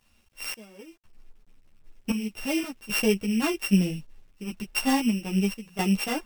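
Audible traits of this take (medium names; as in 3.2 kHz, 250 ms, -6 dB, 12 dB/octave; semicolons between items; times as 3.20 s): a buzz of ramps at a fixed pitch in blocks of 16 samples; random-step tremolo 3.8 Hz, depth 95%; a quantiser's noise floor 12-bit, dither none; a shimmering, thickened sound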